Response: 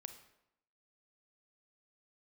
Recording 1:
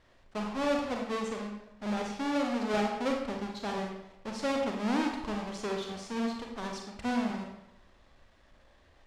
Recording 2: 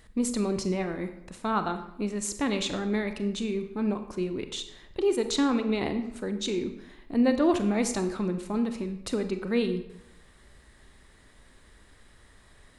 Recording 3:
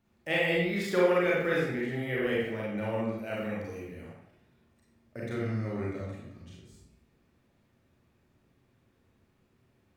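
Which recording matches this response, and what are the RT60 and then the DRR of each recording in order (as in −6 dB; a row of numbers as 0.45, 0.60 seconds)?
2; 0.80, 0.80, 0.80 seconds; 0.5, 8.0, −6.0 decibels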